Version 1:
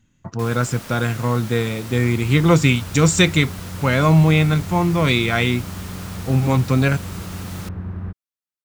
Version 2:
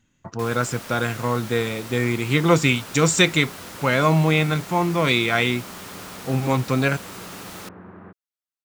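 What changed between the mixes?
second sound: add band-pass filter 230–2,100 Hz
master: add bass and treble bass −7 dB, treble −1 dB

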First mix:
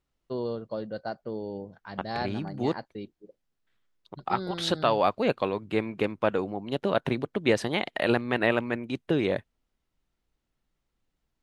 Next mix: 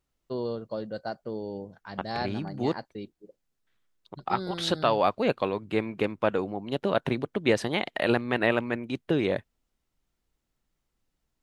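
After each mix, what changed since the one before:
first voice: remove low-pass filter 4,900 Hz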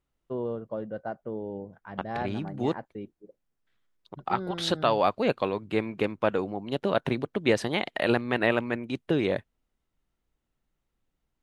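first voice: add moving average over 10 samples

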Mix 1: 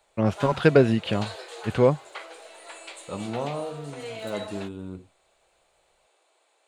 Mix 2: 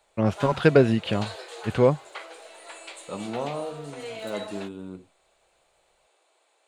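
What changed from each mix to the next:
second voice: add high-pass filter 150 Hz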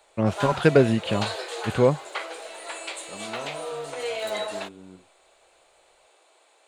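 second voice −7.5 dB
background +7.0 dB

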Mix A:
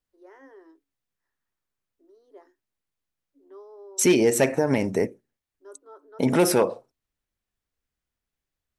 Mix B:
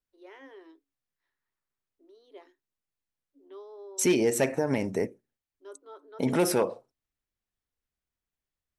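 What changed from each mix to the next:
first voice: add flat-topped bell 3,000 Hz +14.5 dB 1.1 octaves
second voice −5.0 dB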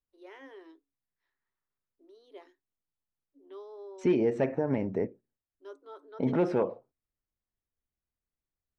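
second voice: add head-to-tape spacing loss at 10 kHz 42 dB

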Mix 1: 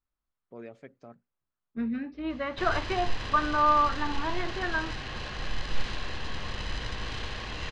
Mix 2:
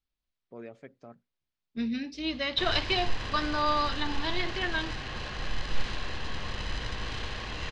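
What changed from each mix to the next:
second voice: remove low-pass with resonance 1,300 Hz, resonance Q 2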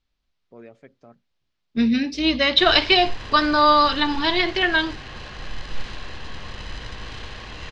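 second voice +12.0 dB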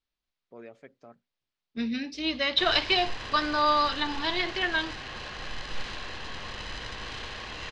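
second voice −7.5 dB
master: add low-shelf EQ 240 Hz −8 dB

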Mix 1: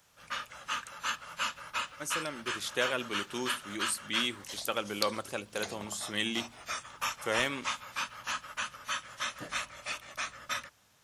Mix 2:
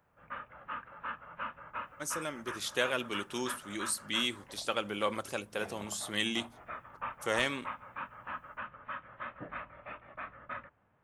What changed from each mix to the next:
background: add Gaussian smoothing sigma 4.9 samples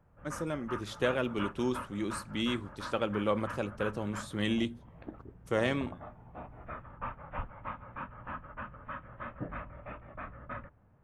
first voice: entry −1.75 s
second voice: add elliptic low-pass filter 3,400 Hz
master: add spectral tilt −3.5 dB per octave

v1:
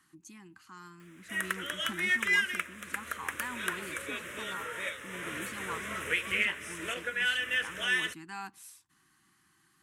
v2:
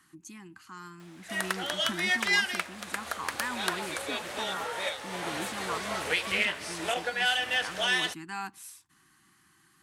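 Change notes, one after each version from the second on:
speech +4.5 dB
background: remove phaser with its sweep stopped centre 1,900 Hz, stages 4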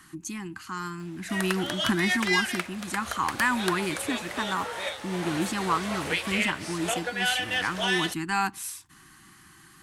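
speech +10.5 dB
master: add low-shelf EQ 72 Hz +10.5 dB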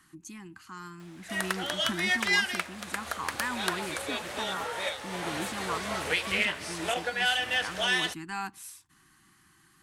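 speech −9.0 dB

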